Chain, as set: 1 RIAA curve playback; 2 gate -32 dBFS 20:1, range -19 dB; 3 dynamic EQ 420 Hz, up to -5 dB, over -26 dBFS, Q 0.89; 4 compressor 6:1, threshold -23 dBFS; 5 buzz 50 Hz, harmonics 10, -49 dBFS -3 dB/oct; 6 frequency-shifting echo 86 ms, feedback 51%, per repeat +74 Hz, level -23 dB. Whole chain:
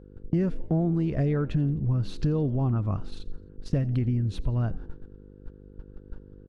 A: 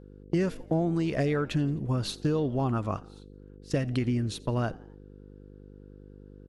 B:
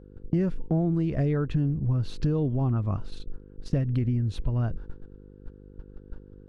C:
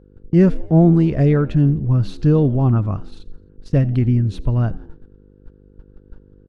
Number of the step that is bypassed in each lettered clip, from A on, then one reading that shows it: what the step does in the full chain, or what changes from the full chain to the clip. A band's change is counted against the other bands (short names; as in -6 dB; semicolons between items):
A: 1, 125 Hz band -8.5 dB; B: 6, echo-to-direct -22.0 dB to none; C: 4, mean gain reduction 7.0 dB